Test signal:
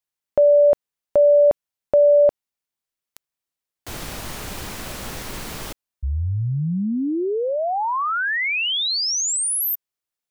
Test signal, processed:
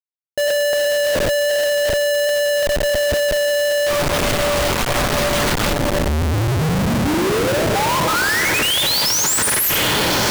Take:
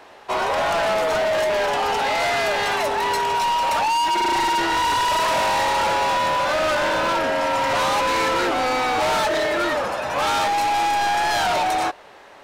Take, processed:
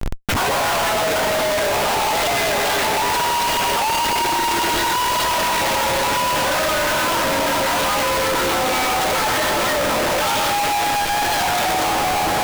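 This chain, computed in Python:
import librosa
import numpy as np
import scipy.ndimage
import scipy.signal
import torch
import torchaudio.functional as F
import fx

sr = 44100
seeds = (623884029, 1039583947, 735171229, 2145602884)

y = fx.spec_dropout(x, sr, seeds[0], share_pct=34)
y = fx.peak_eq(y, sr, hz=3400.0, db=3.0, octaves=0.22)
y = fx.echo_diffused(y, sr, ms=1185, feedback_pct=44, wet_db=-13.5)
y = fx.room_shoebox(y, sr, seeds[1], volume_m3=120.0, walls='hard', distance_m=0.32)
y = fx.schmitt(y, sr, flips_db=-35.5)
y = y * 10.0 ** (1.5 / 20.0)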